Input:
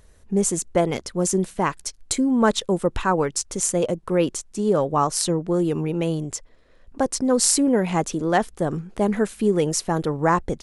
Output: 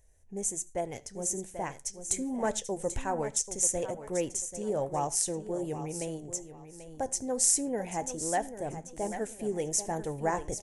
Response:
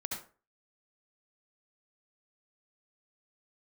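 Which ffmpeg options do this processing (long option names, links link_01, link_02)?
-filter_complex "[0:a]firequalizer=gain_entry='entry(120,0);entry(170,-9);entry(770,1);entry(1200,-15);entry(1800,-2);entry(4300,-11);entry(6200,5);entry(11000,3)':delay=0.05:min_phase=1,aecho=1:1:788|1576|2364:0.266|0.0665|0.0166,asplit=2[link_01][link_02];[1:a]atrim=start_sample=2205,atrim=end_sample=6174[link_03];[link_02][link_03]afir=irnorm=-1:irlink=0,volume=-21dB[link_04];[link_01][link_04]amix=inputs=2:normalize=0,flanger=delay=5.5:depth=4.9:regen=-73:speed=1.2:shape=triangular,dynaudnorm=framelen=720:gausssize=5:maxgain=5.5dB,volume=-7.5dB"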